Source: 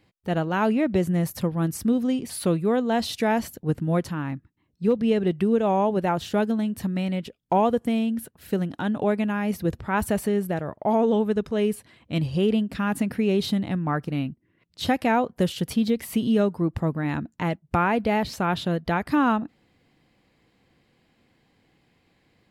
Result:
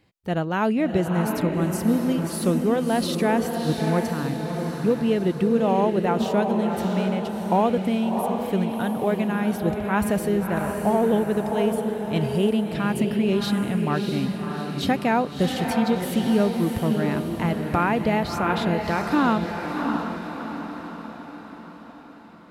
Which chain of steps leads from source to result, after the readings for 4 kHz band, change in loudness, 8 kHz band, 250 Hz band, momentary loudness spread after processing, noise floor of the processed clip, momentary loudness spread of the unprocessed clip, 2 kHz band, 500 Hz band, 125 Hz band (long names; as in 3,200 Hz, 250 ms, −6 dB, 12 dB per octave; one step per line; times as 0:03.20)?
+1.5 dB, +1.5 dB, +1.5 dB, +1.5 dB, 7 LU, −41 dBFS, 7 LU, +2.0 dB, +1.5 dB, +1.5 dB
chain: feedback delay with all-pass diffusion 663 ms, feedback 52%, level −4.5 dB